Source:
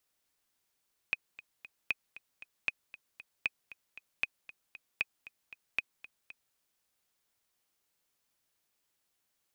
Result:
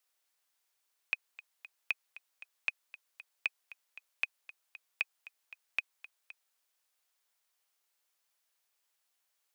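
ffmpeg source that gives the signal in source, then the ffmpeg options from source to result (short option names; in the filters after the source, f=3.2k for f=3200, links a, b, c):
-f lavfi -i "aevalsrc='pow(10,(-16-18*gte(mod(t,3*60/232),60/232))/20)*sin(2*PI*2510*mod(t,60/232))*exp(-6.91*mod(t,60/232)/0.03)':d=5.43:s=44100"
-af "highpass=590"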